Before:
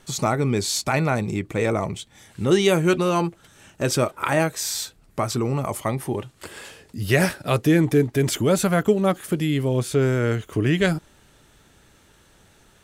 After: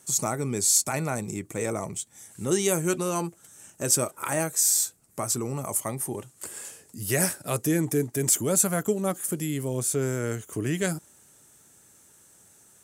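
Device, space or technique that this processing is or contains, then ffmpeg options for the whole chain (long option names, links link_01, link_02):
budget condenser microphone: -af "highpass=100,highshelf=frequency=5400:width_type=q:width=1.5:gain=13,volume=-7dB"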